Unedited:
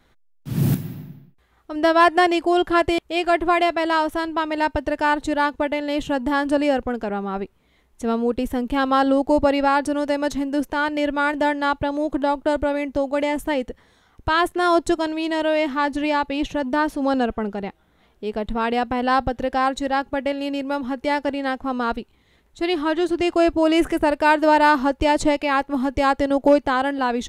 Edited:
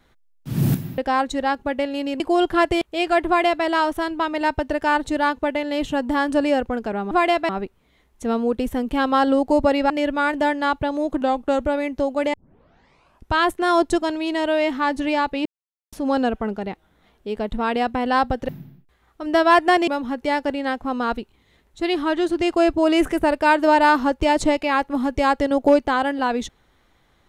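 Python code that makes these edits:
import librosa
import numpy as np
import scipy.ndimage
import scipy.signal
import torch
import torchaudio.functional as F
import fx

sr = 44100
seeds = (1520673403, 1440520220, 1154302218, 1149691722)

y = fx.edit(x, sr, fx.swap(start_s=0.98, length_s=1.39, other_s=19.45, other_length_s=1.22),
    fx.duplicate(start_s=3.44, length_s=0.38, to_s=7.28),
    fx.cut(start_s=9.69, length_s=1.21),
    fx.speed_span(start_s=12.21, length_s=0.4, speed=0.92),
    fx.tape_start(start_s=13.3, length_s=1.0),
    fx.silence(start_s=16.42, length_s=0.47), tone=tone)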